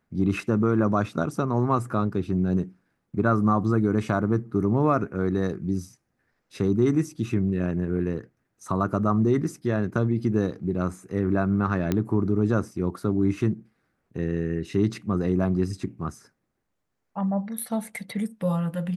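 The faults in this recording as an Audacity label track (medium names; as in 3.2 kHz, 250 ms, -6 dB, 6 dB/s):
11.920000	11.920000	pop -11 dBFS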